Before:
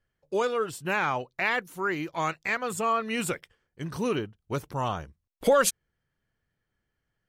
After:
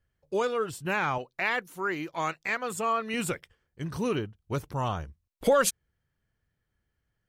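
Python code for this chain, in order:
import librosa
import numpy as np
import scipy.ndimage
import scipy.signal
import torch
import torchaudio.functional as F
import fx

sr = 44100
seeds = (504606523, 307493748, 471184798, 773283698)

y = fx.peak_eq(x, sr, hz=64.0, db=fx.steps((0.0, 9.0), (1.18, -7.0), (3.14, 7.0)), octaves=1.9)
y = y * 10.0 ** (-1.5 / 20.0)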